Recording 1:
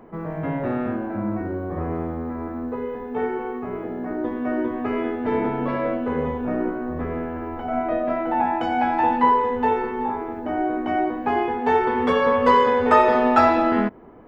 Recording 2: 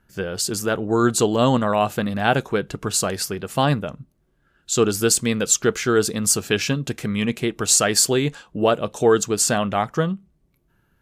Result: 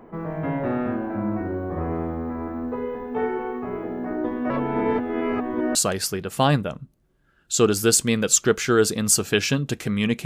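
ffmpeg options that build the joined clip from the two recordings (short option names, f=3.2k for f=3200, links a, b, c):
-filter_complex "[0:a]apad=whole_dur=10.25,atrim=end=10.25,asplit=2[a][b];[a]atrim=end=4.502[c];[b]atrim=start=4.498:end=5.752,asetpts=PTS-STARTPTS,areverse[d];[1:a]atrim=start=2.928:end=7.43[e];[c][d]acrossfade=d=0.004:c1=hsin:c2=hsin[f];[f][e]acrossfade=d=0.004:c1=hsin:c2=hsin"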